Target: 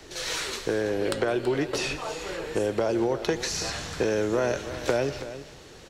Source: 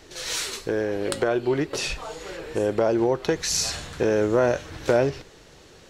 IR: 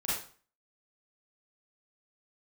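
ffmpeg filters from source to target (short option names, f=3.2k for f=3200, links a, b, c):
-filter_complex "[0:a]acrossover=split=84|170|2300|6100[a][b][c][d][e];[a]acompressor=threshold=-47dB:ratio=4[f];[b]acompressor=threshold=-45dB:ratio=4[g];[c]acompressor=threshold=-25dB:ratio=4[h];[d]acompressor=threshold=-36dB:ratio=4[i];[e]acompressor=threshold=-44dB:ratio=4[j];[f][g][h][i][j]amix=inputs=5:normalize=0,aecho=1:1:329:0.211,asplit=2[k][l];[1:a]atrim=start_sample=2205,adelay=121[m];[l][m]afir=irnorm=-1:irlink=0,volume=-22dB[n];[k][n]amix=inputs=2:normalize=0,volume=2dB"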